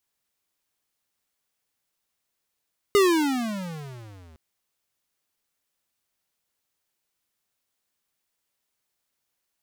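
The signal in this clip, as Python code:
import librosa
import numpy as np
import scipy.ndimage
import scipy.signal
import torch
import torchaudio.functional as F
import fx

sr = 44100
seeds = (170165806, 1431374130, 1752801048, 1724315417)

y = fx.riser_tone(sr, length_s=1.41, level_db=-16.0, wave='square', hz=416.0, rise_st=-29.5, swell_db=-34)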